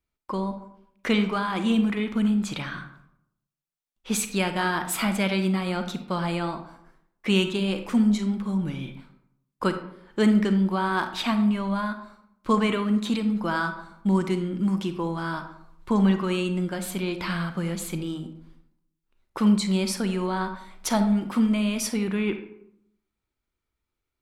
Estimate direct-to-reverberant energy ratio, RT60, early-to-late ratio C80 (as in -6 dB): 7.5 dB, 0.75 s, 12.5 dB